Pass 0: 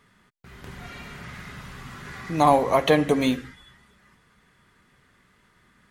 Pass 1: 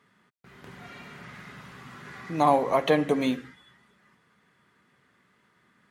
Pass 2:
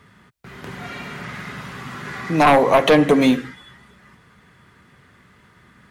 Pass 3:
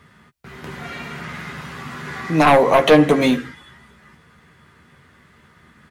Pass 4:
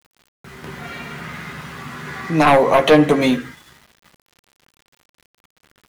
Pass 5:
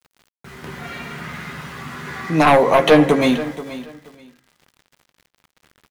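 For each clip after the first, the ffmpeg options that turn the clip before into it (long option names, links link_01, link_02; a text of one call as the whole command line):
ffmpeg -i in.wav -af "highpass=140,highshelf=frequency=4000:gain=-6,volume=-3dB" out.wav
ffmpeg -i in.wav -filter_complex "[0:a]acrossover=split=100|1900[link_01][link_02][link_03];[link_01]acompressor=mode=upward:threshold=-58dB:ratio=2.5[link_04];[link_04][link_02][link_03]amix=inputs=3:normalize=0,aeval=exprs='0.422*sin(PI/2*2.51*val(0)/0.422)':channel_layout=same" out.wav
ffmpeg -i in.wav -filter_complex "[0:a]asplit=2[link_01][link_02];[link_02]adelay=13,volume=-7.5dB[link_03];[link_01][link_03]amix=inputs=2:normalize=0" out.wav
ffmpeg -i in.wav -af "aeval=exprs='val(0)*gte(abs(val(0)),0.00708)':channel_layout=same" out.wav
ffmpeg -i in.wav -af "aecho=1:1:479|958:0.178|0.0356" out.wav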